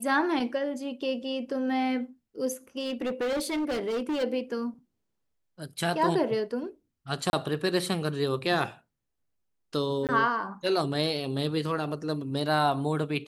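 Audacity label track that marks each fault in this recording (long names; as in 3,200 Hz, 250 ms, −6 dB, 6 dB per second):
2.790000	4.240000	clipping −26 dBFS
7.300000	7.330000	drop-out 31 ms
10.070000	10.090000	drop-out 18 ms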